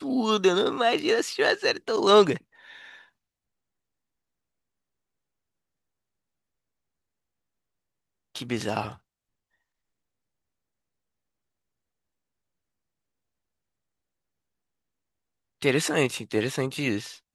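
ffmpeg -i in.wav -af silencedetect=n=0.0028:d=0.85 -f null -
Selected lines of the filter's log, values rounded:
silence_start: 3.06
silence_end: 8.35 | silence_duration: 5.29
silence_start: 8.98
silence_end: 15.61 | silence_duration: 6.63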